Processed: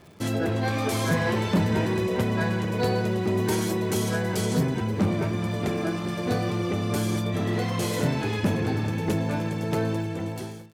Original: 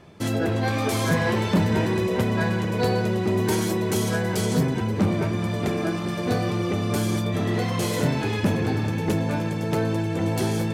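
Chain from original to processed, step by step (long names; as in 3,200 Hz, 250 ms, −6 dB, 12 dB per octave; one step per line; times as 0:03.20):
fade-out on the ending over 0.86 s
surface crackle 130 per second −40 dBFS
level −2 dB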